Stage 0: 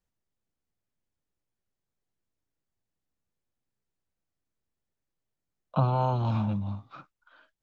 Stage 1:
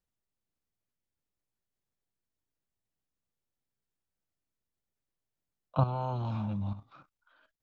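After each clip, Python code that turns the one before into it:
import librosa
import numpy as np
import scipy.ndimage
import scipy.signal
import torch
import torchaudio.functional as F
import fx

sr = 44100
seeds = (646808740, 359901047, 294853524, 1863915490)

y = fx.level_steps(x, sr, step_db=11)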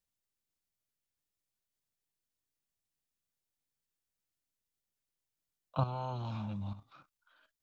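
y = fx.high_shelf(x, sr, hz=2100.0, db=9.0)
y = y * librosa.db_to_amplitude(-5.5)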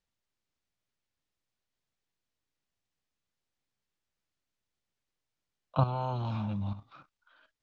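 y = fx.air_absorb(x, sr, metres=94.0)
y = y * librosa.db_to_amplitude(5.5)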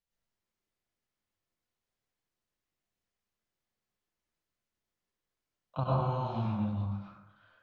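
y = fx.rev_plate(x, sr, seeds[0], rt60_s=0.93, hf_ratio=0.45, predelay_ms=85, drr_db=-7.0)
y = y * librosa.db_to_amplitude(-7.5)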